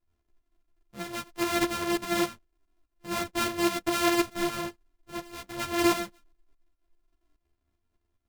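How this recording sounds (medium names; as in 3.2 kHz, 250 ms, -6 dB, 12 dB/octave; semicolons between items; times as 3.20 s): a buzz of ramps at a fixed pitch in blocks of 128 samples; tremolo saw up 4.9 Hz, depth 60%; a shimmering, thickened sound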